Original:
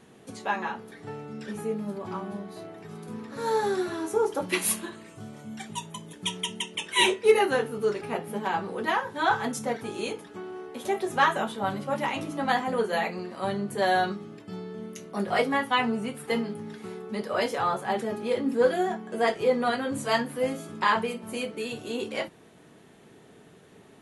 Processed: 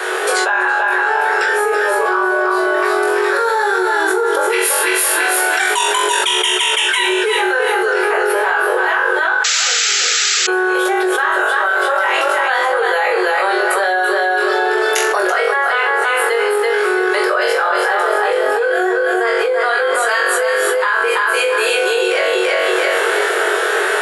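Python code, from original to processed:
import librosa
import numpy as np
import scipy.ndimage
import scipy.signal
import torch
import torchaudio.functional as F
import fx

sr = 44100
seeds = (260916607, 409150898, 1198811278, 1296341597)

p1 = x + fx.room_flutter(x, sr, wall_m=3.7, rt60_s=0.39, dry=0)
p2 = fx.rider(p1, sr, range_db=4, speed_s=0.5)
p3 = fx.peak_eq(p2, sr, hz=1500.0, db=13.0, octaves=0.51)
p4 = fx.notch(p3, sr, hz=6200.0, q=9.7)
p5 = fx.echo_feedback(p4, sr, ms=333, feedback_pct=23, wet_db=-5.0)
p6 = fx.spec_paint(p5, sr, seeds[0], shape='noise', start_s=9.44, length_s=1.03, low_hz=1200.0, high_hz=7800.0, level_db=-7.0)
p7 = scipy.signal.sosfilt(scipy.signal.butter(16, 360.0, 'highpass', fs=sr, output='sos'), p6)
p8 = fx.env_flatten(p7, sr, amount_pct=100)
y = F.gain(torch.from_numpy(p8), -9.5).numpy()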